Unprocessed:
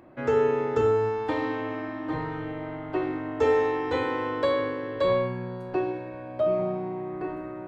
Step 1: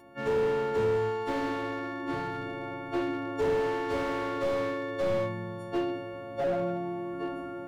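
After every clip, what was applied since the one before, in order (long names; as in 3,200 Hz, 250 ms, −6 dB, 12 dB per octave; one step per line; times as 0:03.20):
every partial snapped to a pitch grid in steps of 4 semitones
slew-rate limiting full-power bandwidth 41 Hz
level −2.5 dB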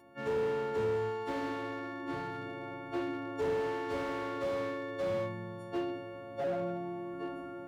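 high-pass filter 51 Hz
level −5 dB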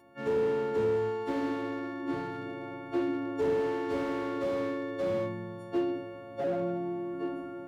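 dynamic equaliser 290 Hz, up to +7 dB, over −47 dBFS, Q 1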